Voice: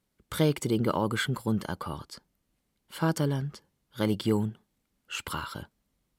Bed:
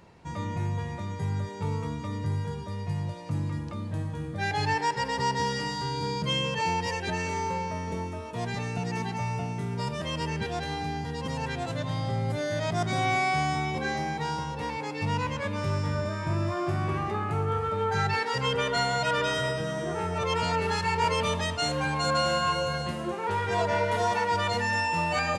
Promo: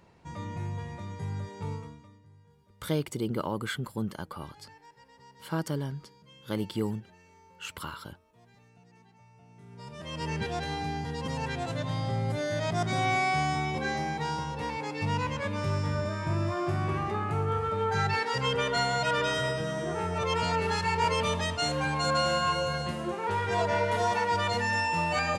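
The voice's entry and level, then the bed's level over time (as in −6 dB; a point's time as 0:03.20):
2.50 s, −4.5 dB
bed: 0:01.72 −5 dB
0:02.25 −27.5 dB
0:09.33 −27.5 dB
0:10.31 −1 dB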